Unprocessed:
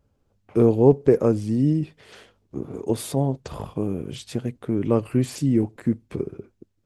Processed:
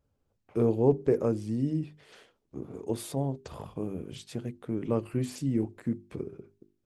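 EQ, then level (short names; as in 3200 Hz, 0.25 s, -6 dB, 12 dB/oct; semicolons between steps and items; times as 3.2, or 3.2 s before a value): notches 50/100/150/200/250/300/350/400 Hz; -7.5 dB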